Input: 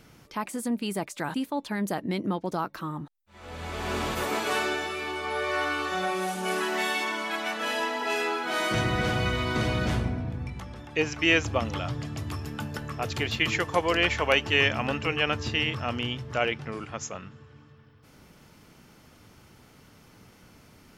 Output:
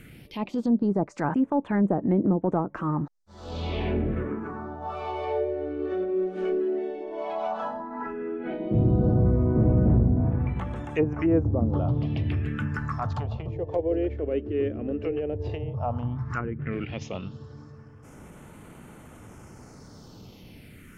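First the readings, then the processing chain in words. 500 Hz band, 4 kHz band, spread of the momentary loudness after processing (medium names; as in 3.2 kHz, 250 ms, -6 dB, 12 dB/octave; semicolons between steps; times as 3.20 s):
+2.5 dB, under -15 dB, 12 LU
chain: transient shaper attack -7 dB, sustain -2 dB; low-pass that closes with the level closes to 420 Hz, closed at -25.5 dBFS; phase shifter stages 4, 0.12 Hz, lowest notch 150–4900 Hz; trim +8 dB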